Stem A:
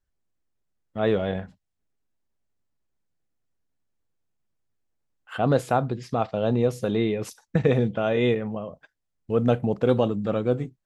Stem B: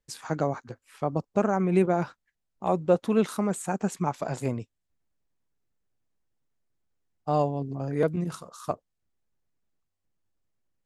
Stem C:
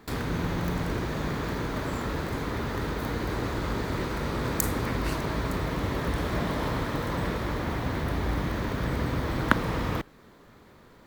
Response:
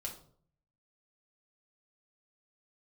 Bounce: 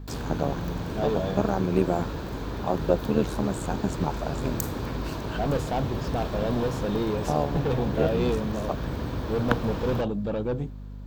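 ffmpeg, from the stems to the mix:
-filter_complex "[0:a]asoftclip=type=tanh:threshold=-23dB,volume=0.5dB[a];[1:a]tremolo=f=80:d=0.857,volume=2.5dB[b];[2:a]aeval=exprs='val(0)+0.0178*(sin(2*PI*50*n/s)+sin(2*PI*2*50*n/s)/2+sin(2*PI*3*50*n/s)/3+sin(2*PI*4*50*n/s)/4+sin(2*PI*5*50*n/s)/5)':c=same,volume=-2.5dB[c];[a][b][c]amix=inputs=3:normalize=0,equalizer=f=1.25k:t=o:w=0.33:g=-4,equalizer=f=2k:t=o:w=0.33:g=-10,equalizer=f=10k:t=o:w=0.33:g=-11"

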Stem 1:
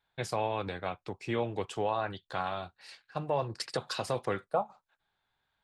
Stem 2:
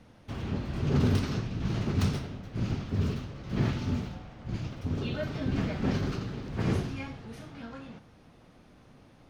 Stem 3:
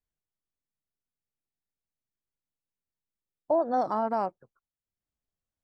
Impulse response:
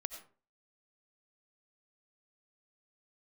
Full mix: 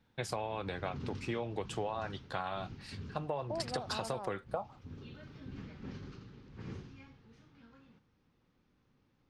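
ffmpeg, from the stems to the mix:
-filter_complex "[0:a]volume=0dB[a];[1:a]lowpass=f=6.8k:w=0.5412,lowpass=f=6.8k:w=1.3066,equalizer=f=660:t=o:w=0.35:g=-11,volume=-16.5dB[b];[2:a]volume=-12dB[c];[a][b][c]amix=inputs=3:normalize=0,acompressor=threshold=-32dB:ratio=12"

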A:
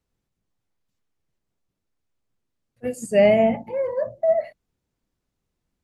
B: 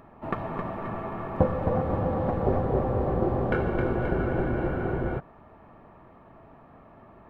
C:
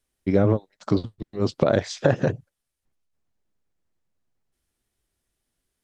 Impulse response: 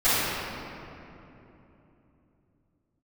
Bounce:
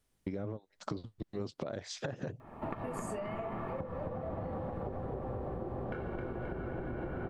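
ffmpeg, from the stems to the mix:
-filter_complex "[0:a]acompressor=threshold=-28dB:ratio=6,flanger=delay=18:depth=5.6:speed=1.1,volume=3dB[a];[1:a]adelay=2400,volume=2.5dB[b];[2:a]alimiter=limit=-12dB:level=0:latency=1:release=74,volume=-2.5dB[c];[a][b]amix=inputs=2:normalize=0,acompressor=threshold=-27dB:ratio=6,volume=0dB[d];[c][d]amix=inputs=2:normalize=0,acompressor=threshold=-35dB:ratio=10"

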